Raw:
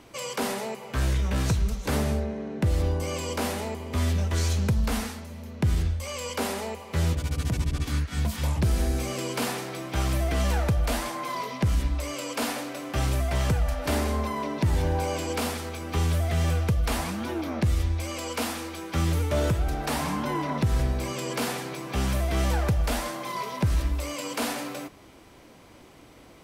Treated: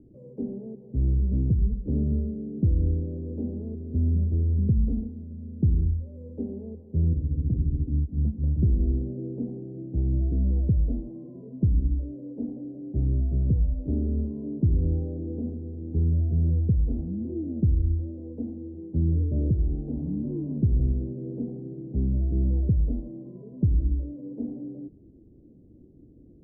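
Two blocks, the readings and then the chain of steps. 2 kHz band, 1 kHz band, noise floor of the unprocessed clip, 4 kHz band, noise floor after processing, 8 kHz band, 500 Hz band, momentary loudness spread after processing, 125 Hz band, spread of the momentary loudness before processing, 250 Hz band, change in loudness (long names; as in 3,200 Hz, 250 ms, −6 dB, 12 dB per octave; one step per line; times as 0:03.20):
below −40 dB, below −30 dB, −51 dBFS, below −40 dB, −52 dBFS, below −40 dB, −8.0 dB, 12 LU, +2.0 dB, 6 LU, +1.5 dB, +0.5 dB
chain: inverse Chebyshev low-pass filter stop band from 1,200 Hz, stop band 60 dB
level +2 dB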